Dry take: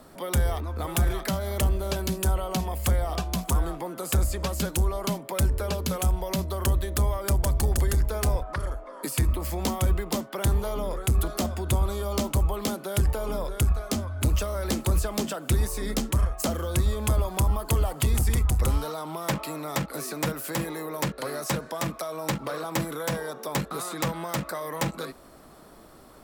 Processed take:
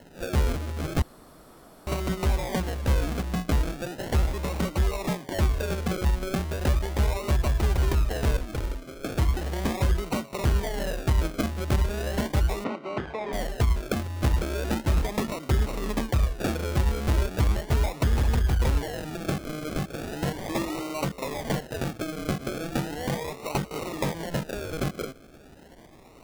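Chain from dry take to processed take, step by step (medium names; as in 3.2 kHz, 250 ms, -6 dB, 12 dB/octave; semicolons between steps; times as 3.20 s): 20.41–21.01 s: comb 3.3 ms, depth 63%; decimation with a swept rate 37×, swing 60% 0.37 Hz; 1.02–1.87 s: room tone; 12.64–13.33 s: band-pass 220–2400 Hz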